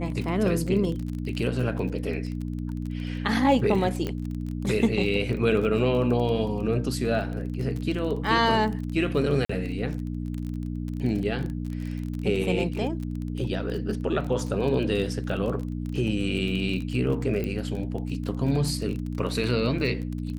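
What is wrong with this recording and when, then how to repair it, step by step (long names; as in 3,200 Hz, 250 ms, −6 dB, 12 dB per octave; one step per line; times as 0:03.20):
surface crackle 24 per second −31 dBFS
mains hum 60 Hz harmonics 5 −31 dBFS
0:04.07: click −17 dBFS
0:09.45–0:09.49: drop-out 44 ms
0:17.44: click −18 dBFS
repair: click removal
hum removal 60 Hz, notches 5
repair the gap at 0:09.45, 44 ms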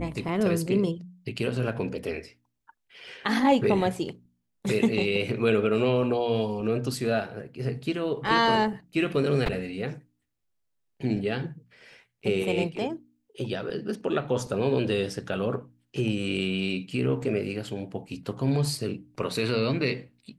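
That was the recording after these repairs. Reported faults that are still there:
none of them is left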